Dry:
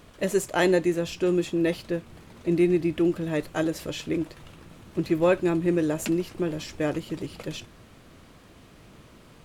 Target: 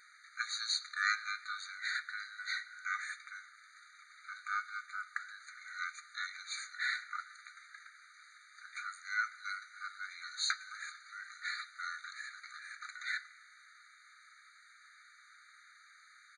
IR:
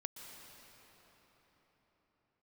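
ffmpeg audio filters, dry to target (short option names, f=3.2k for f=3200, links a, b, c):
-filter_complex "[0:a]asetrate=25442,aresample=44100,asplit=2[a][b];[1:a]atrim=start_sample=2205[c];[b][c]afir=irnorm=-1:irlink=0,volume=-13dB[d];[a][d]amix=inputs=2:normalize=0,afftfilt=real='re*eq(mod(floor(b*sr/1024/1200),2),1)':imag='im*eq(mod(floor(b*sr/1024/1200),2),1)':win_size=1024:overlap=0.75,volume=1dB"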